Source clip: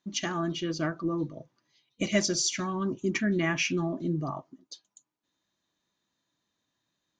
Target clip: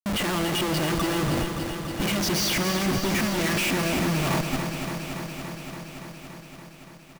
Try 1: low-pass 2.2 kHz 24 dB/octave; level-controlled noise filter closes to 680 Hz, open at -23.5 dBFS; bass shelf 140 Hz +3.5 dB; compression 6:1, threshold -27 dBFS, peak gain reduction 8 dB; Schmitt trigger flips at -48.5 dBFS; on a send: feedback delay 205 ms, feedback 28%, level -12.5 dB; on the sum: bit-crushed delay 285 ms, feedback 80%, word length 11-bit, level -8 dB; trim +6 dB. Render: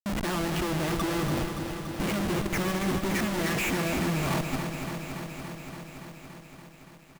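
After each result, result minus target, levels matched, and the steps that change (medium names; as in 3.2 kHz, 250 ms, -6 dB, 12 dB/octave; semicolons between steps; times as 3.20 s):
compression: peak gain reduction +8 dB; 4 kHz band -4.5 dB
remove: compression 6:1, threshold -27 dBFS, peak gain reduction 8 dB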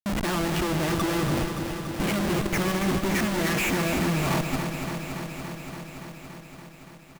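4 kHz band -4.5 dB
change: low-pass 5.3 kHz 24 dB/octave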